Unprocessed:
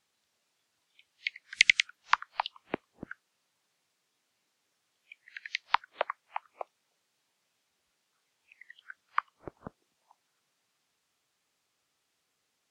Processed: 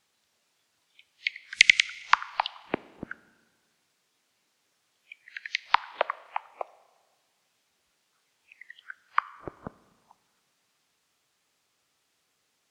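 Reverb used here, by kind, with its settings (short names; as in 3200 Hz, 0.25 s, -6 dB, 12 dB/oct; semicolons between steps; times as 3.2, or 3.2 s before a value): Schroeder reverb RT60 1.5 s, combs from 27 ms, DRR 18.5 dB; gain +4.5 dB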